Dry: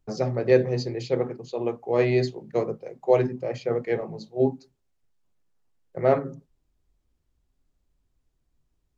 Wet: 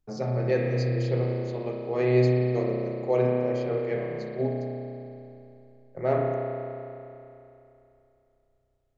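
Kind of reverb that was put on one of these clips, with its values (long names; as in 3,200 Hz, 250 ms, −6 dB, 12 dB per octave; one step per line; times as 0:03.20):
spring reverb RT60 2.9 s, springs 32 ms, chirp 30 ms, DRR −2 dB
level −6 dB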